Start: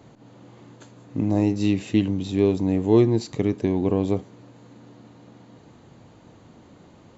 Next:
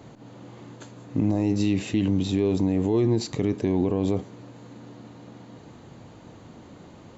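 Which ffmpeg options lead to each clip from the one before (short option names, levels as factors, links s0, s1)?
-af "alimiter=limit=0.141:level=0:latency=1:release=42,volume=1.5"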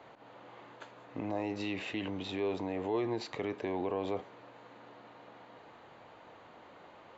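-filter_complex "[0:a]acrossover=split=500 3500:gain=0.1 1 0.0891[s0][s1][s2];[s0][s1][s2]amix=inputs=3:normalize=0"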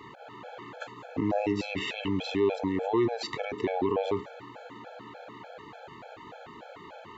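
-filter_complex "[0:a]asplit=2[s0][s1];[s1]alimiter=level_in=2.24:limit=0.0631:level=0:latency=1:release=149,volume=0.447,volume=0.794[s2];[s0][s2]amix=inputs=2:normalize=0,afftfilt=real='re*gt(sin(2*PI*3.4*pts/sr)*(1-2*mod(floor(b*sr/1024/440),2)),0)':imag='im*gt(sin(2*PI*3.4*pts/sr)*(1-2*mod(floor(b*sr/1024/440),2)),0)':win_size=1024:overlap=0.75,volume=2.11"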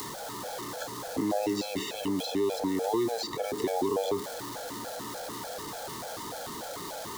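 -filter_complex "[0:a]aeval=exprs='val(0)+0.5*0.01*sgn(val(0))':c=same,aexciter=amount=13.7:drive=5.3:freq=3800,acrossover=split=180|1100|2500[s0][s1][s2][s3];[s0]acompressor=threshold=0.00316:ratio=4[s4];[s1]acompressor=threshold=0.0447:ratio=4[s5];[s2]acompressor=threshold=0.00562:ratio=4[s6];[s3]acompressor=threshold=0.00447:ratio=4[s7];[s4][s5][s6][s7]amix=inputs=4:normalize=0,volume=1.19"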